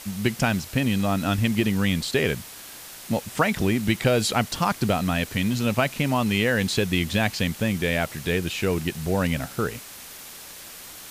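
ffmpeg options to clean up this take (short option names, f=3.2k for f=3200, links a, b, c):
-af "afwtdn=0.01"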